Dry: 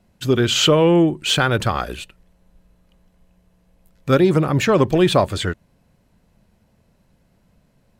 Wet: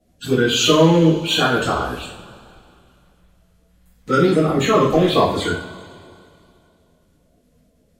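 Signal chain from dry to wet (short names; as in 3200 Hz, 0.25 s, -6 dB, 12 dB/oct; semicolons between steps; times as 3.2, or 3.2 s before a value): bin magnitudes rounded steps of 30 dB; two-slope reverb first 0.49 s, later 2.5 s, from -18 dB, DRR -9 dB; gain -8 dB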